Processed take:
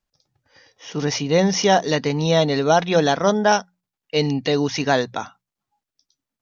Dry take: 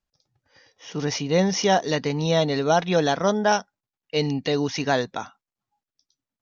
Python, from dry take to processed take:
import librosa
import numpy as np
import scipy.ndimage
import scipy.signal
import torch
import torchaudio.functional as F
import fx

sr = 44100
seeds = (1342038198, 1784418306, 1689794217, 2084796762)

y = fx.hum_notches(x, sr, base_hz=60, count=3)
y = F.gain(torch.from_numpy(y), 3.5).numpy()